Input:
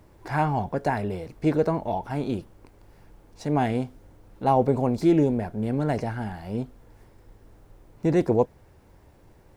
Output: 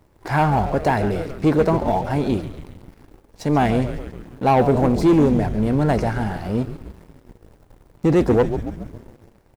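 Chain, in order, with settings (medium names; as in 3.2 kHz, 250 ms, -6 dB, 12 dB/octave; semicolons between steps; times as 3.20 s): frequency-shifting echo 138 ms, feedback 62%, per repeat -97 Hz, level -12 dB; waveshaping leveller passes 2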